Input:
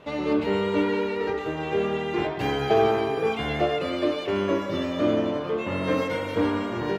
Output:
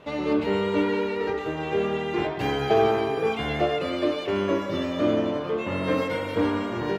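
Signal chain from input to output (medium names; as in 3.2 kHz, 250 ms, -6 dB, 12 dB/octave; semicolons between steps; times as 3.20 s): 5.81–6.39 s: band-stop 6.2 kHz, Q 9.5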